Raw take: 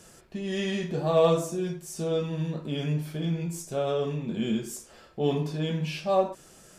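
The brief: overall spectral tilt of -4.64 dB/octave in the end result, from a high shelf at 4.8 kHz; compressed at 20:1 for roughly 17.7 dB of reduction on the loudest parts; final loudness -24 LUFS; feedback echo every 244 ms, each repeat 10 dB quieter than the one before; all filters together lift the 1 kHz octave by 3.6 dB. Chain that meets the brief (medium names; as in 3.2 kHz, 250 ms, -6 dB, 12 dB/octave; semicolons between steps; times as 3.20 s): peaking EQ 1 kHz +4.5 dB; treble shelf 4.8 kHz +9 dB; compression 20:1, threshold -32 dBFS; feedback delay 244 ms, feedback 32%, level -10 dB; trim +12.5 dB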